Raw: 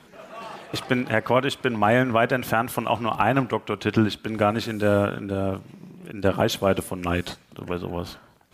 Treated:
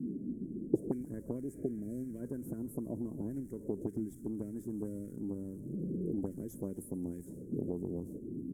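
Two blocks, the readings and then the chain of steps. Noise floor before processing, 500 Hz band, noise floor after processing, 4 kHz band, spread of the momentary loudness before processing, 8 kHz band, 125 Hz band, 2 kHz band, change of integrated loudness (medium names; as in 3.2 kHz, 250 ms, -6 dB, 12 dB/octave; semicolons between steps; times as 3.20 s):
-53 dBFS, -17.5 dB, -50 dBFS, under -40 dB, 15 LU, -17.0 dB, -14.0 dB, under -40 dB, -16.0 dB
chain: jump at every zero crossing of -31.5 dBFS; inverse Chebyshev band-stop 730–4400 Hz, stop band 50 dB; gate -39 dBFS, range -7 dB; in parallel at -2 dB: compression, threshold -34 dBFS, peak gain reduction 17.5 dB; on the sum: auto-wah 220–2000 Hz, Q 3.2, up, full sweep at -19.5 dBFS; on a send: frequency-shifting echo 134 ms, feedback 59%, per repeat -91 Hz, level -19 dB; on the sum: spectral replace 1.45–2.04 s, 730–4700 Hz after; trim +10.5 dB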